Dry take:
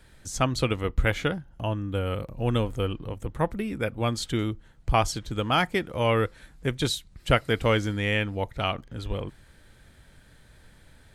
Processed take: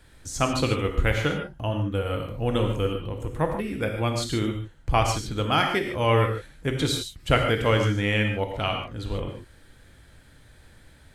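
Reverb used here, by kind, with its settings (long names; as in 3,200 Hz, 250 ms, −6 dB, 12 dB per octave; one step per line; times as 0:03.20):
reverb whose tail is shaped and stops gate 170 ms flat, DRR 3 dB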